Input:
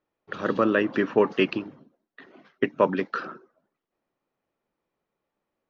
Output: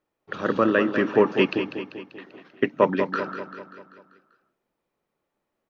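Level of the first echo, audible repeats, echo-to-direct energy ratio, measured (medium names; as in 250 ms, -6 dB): -9.0 dB, 5, -7.5 dB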